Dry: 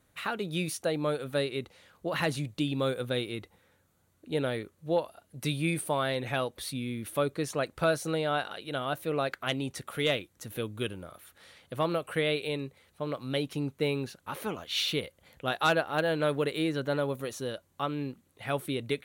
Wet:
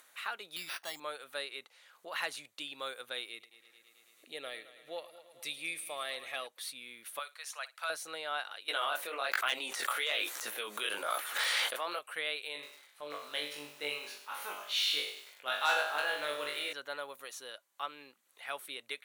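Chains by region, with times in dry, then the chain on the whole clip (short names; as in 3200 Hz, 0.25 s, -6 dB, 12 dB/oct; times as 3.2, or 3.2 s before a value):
0.56–1 comb 1 ms, depth 77% + careless resampling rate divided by 6×, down none, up hold
3.29–6.47 bell 930 Hz -14.5 dB 0.23 oct + notch 1500 Hz, Q 5.7 + multi-head echo 0.109 s, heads first and second, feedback 54%, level -17.5 dB
7.19–7.9 Bessel high-pass 1000 Hz, order 8 + flutter echo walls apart 10 m, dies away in 0.2 s
8.68–11.99 HPF 300 Hz + chorus 1.2 Hz, delay 16 ms, depth 7.7 ms + fast leveller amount 100%
12.53–16.73 low shelf 68 Hz -10.5 dB + flutter echo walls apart 3.5 m, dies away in 0.46 s + lo-fi delay 97 ms, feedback 55%, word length 7-bit, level -11 dB
whole clip: de-esser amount 60%; HPF 980 Hz 12 dB/oct; upward compressor, threshold -48 dBFS; gain -3 dB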